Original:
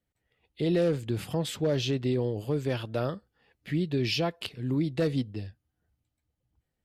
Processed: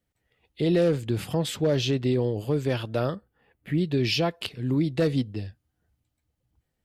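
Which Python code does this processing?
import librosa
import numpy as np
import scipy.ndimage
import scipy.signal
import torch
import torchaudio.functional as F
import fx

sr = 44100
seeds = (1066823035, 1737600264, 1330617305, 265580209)

y = fx.peak_eq(x, sr, hz=5100.0, db=-14.0, octaves=1.3, at=(3.15, 3.78))
y = y * librosa.db_to_amplitude(3.5)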